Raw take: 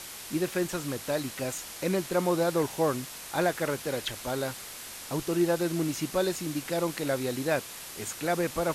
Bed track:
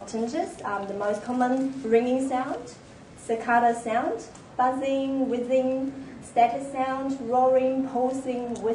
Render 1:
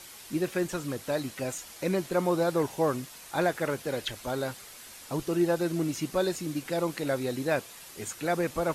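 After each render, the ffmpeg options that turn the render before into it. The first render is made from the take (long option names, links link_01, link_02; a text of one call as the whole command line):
ffmpeg -i in.wav -af "afftdn=noise_reduction=7:noise_floor=-43" out.wav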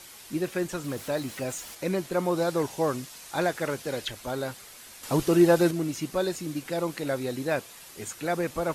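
ffmpeg -i in.wav -filter_complex "[0:a]asettb=1/sr,asplit=3[link_01][link_02][link_03];[link_01]atrim=end=0.844[link_04];[link_02]atrim=start=0.84:end=1.75,asetpts=PTS-STARTPTS,afade=type=in:duration=0.004:curve=qsin,afade=type=out:start_time=0.906:duration=0.004:curve=qsin,aeval=exprs='val(0)+0.5*0.00668*sgn(val(0))':channel_layout=same[link_05];[link_03]atrim=start=1.746[link_06];[link_04][link_05]acrossfade=duration=0.004:curve1=hsin:curve2=qsin[link_07];[link_07][link_06]acrossfade=duration=0.004:curve1=qsin:curve2=hsin,asettb=1/sr,asplit=3[link_08][link_09][link_10];[link_08]atrim=end=2.364[link_11];[link_09]atrim=start=2.36:end=4.07,asetpts=PTS-STARTPTS,afade=type=in:duration=0.004:curve=qsin,afade=type=out:start_time=1.706:duration=0.004:curve=qsin,equalizer=frequency=5700:width_type=o:width=1.7:gain=3.5[link_12];[link_10]atrim=start=4.066[link_13];[link_11][link_12]acrossfade=duration=0.004:curve1=hsin:curve2=qsin[link_14];[link_14][link_13]acrossfade=duration=0.004:curve1=qsin:curve2=hsin,asettb=1/sr,asplit=3[link_15][link_16][link_17];[link_15]atrim=end=5.034[link_18];[link_16]atrim=start=5.03:end=5.71,asetpts=PTS-STARTPTS,afade=type=in:duration=0.004:curve=qsin,afade=type=out:start_time=0.676:duration=0.004:curve=qsin,acontrast=82[link_19];[link_17]atrim=start=5.706[link_20];[link_18][link_19]acrossfade=duration=0.004:curve1=hsin:curve2=qsin[link_21];[link_21][link_20]acrossfade=duration=0.004:curve1=qsin:curve2=hsin" out.wav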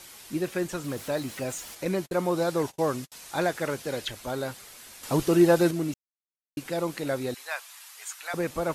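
ffmpeg -i in.wav -filter_complex "[0:a]asettb=1/sr,asplit=3[link_01][link_02][link_03];[link_01]atrim=end=1.854[link_04];[link_02]atrim=start=1.85:end=3.12,asetpts=PTS-STARTPTS,afade=type=in:duration=0.004:curve=qsin,afade=type=out:start_time=1.266:duration=0.004:curve=qsin,agate=range=-44dB:threshold=-40dB:ratio=16:release=100:detection=peak[link_05];[link_03]atrim=start=3.116[link_06];[link_04][link_05]acrossfade=duration=0.004:curve1=hsin:curve2=qsin[link_07];[link_07][link_06]acrossfade=duration=0.004:curve1=qsin:curve2=hsin,asettb=1/sr,asplit=3[link_08][link_09][link_10];[link_08]atrim=end=7.344[link_11];[link_09]atrim=start=7.34:end=8.34,asetpts=PTS-STARTPTS,afade=type=in:duration=0.004:curve=qsin,afade=type=out:start_time=0.996:duration=0.004:curve=qsin,highpass=frequency=880:width=0.5412,highpass=frequency=880:width=1.3066[link_12];[link_10]atrim=start=8.336[link_13];[link_11][link_12]acrossfade=duration=0.004:curve1=hsin:curve2=qsin[link_14];[link_14][link_13]acrossfade=duration=0.004:curve1=qsin:curve2=hsin,asplit=3[link_15][link_16][link_17];[link_15]atrim=end=5.94,asetpts=PTS-STARTPTS,afade=type=out:start_time=5.936:duration=0.004:curve=hsin[link_18];[link_16]atrim=start=5.94:end=6.57,asetpts=PTS-STARTPTS,volume=0[link_19];[link_17]atrim=start=6.57,asetpts=PTS-STARTPTS,afade=type=in:duration=0.004:curve=hsin[link_20];[link_18][link_19][link_20]concat=n=3:v=0:a=1" out.wav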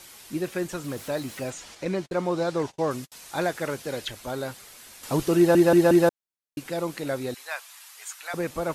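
ffmpeg -i in.wav -filter_complex "[0:a]asettb=1/sr,asplit=3[link_01][link_02][link_03];[link_01]atrim=end=1.504[link_04];[link_02]atrim=start=1.5:end=2.91,asetpts=PTS-STARTPTS,afade=type=in:duration=0.004:curve=qsin,afade=type=out:start_time=1.406:duration=0.004:curve=qsin,lowpass=6600[link_05];[link_03]atrim=start=2.906[link_06];[link_04][link_05]acrossfade=duration=0.004:curve1=hsin:curve2=qsin[link_07];[link_07][link_06]acrossfade=duration=0.004:curve1=qsin:curve2=hsin,asplit=5[link_08][link_09][link_10][link_11][link_12];[link_08]atrim=end=5.552[link_13];[link_09]atrim=start=5.368:end=5.552[link_14];[link_10]atrim=start=5.368:end=5.552[link_15];[link_11]atrim=start=5.368:end=5.552[link_16];[link_12]atrim=start=6.088[link_17];[link_13][link_14]acrossfade=duration=0.004:curve1=hsin:curve2=hsin[link_18];[link_18][link_15]acrossfade=duration=0.004:curve1=hsin:curve2=hsin[link_19];[link_19][link_16]acrossfade=duration=0.004:curve1=hsin:curve2=hsin[link_20];[link_20][link_17]acrossfade=duration=0.004:curve1=hsin:curve2=hsin" out.wav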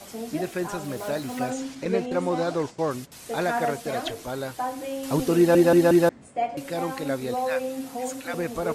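ffmpeg -i in.wav -i bed.wav -filter_complex "[1:a]volume=-6.5dB[link_01];[0:a][link_01]amix=inputs=2:normalize=0" out.wav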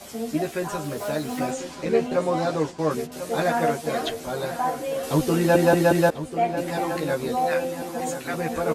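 ffmpeg -i in.wav -filter_complex "[0:a]asplit=2[link_01][link_02];[link_02]adelay=13,volume=-2dB[link_03];[link_01][link_03]amix=inputs=2:normalize=0,asplit=2[link_04][link_05];[link_05]adelay=1044,lowpass=frequency=4000:poles=1,volume=-11dB,asplit=2[link_06][link_07];[link_07]adelay=1044,lowpass=frequency=4000:poles=1,volume=0.53,asplit=2[link_08][link_09];[link_09]adelay=1044,lowpass=frequency=4000:poles=1,volume=0.53,asplit=2[link_10][link_11];[link_11]adelay=1044,lowpass=frequency=4000:poles=1,volume=0.53,asplit=2[link_12][link_13];[link_13]adelay=1044,lowpass=frequency=4000:poles=1,volume=0.53,asplit=2[link_14][link_15];[link_15]adelay=1044,lowpass=frequency=4000:poles=1,volume=0.53[link_16];[link_04][link_06][link_08][link_10][link_12][link_14][link_16]amix=inputs=7:normalize=0" out.wav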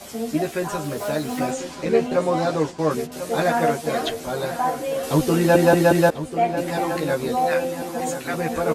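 ffmpeg -i in.wav -af "volume=2.5dB" out.wav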